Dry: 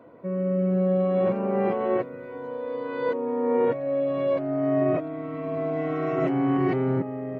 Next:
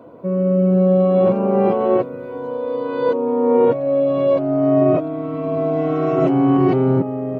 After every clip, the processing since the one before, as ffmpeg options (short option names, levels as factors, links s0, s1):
-af "equalizer=f=1900:w=2.4:g=-12,volume=2.66"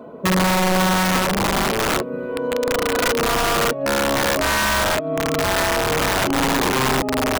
-af "aecho=1:1:4.7:0.6,acompressor=threshold=0.112:ratio=8,aeval=exprs='(mod(7.5*val(0)+1,2)-1)/7.5':c=same,volume=1.5"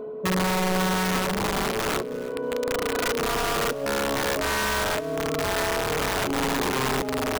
-af "areverse,acompressor=mode=upward:threshold=0.0501:ratio=2.5,areverse,aeval=exprs='val(0)+0.0501*sin(2*PI*430*n/s)':c=same,aecho=1:1:318|636:0.119|0.0321,volume=0.473"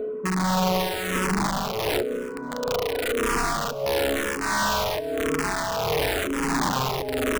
-filter_complex "[0:a]aeval=exprs='0.133*(cos(1*acos(clip(val(0)/0.133,-1,1)))-cos(1*PI/2))+0.0075*(cos(5*acos(clip(val(0)/0.133,-1,1)))-cos(5*PI/2))':c=same,tremolo=f=1.5:d=0.38,asplit=2[s0][s1];[s1]afreqshift=-0.97[s2];[s0][s2]amix=inputs=2:normalize=1,volume=1.68"